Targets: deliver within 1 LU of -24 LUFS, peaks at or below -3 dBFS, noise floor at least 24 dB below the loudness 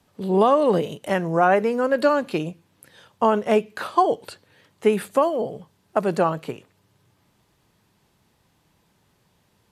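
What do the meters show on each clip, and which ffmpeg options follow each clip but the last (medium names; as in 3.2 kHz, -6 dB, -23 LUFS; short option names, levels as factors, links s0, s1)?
loudness -22.0 LUFS; peak level -6.0 dBFS; loudness target -24.0 LUFS
-> -af "volume=0.794"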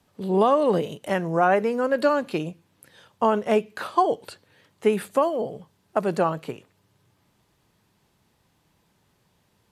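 loudness -24.0 LUFS; peak level -8.0 dBFS; noise floor -67 dBFS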